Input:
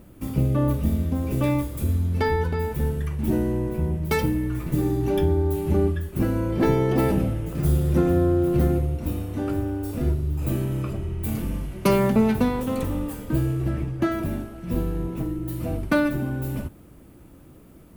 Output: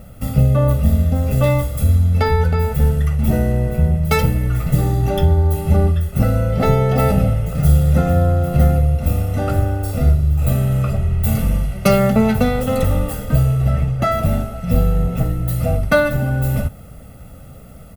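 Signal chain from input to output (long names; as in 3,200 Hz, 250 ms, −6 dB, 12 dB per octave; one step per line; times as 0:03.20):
comb filter 1.5 ms, depth 94%
in parallel at −1.5 dB: speech leveller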